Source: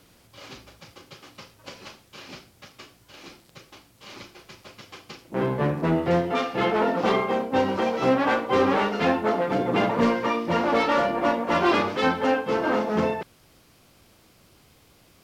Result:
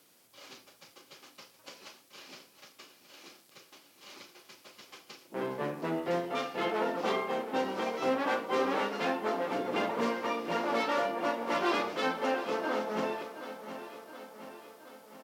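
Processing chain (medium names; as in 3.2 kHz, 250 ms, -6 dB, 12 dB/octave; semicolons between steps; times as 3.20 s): high-pass 250 Hz 12 dB/octave; treble shelf 6.3 kHz +9 dB; on a send: feedback delay 721 ms, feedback 58%, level -12 dB; on the sum: trim -8.5 dB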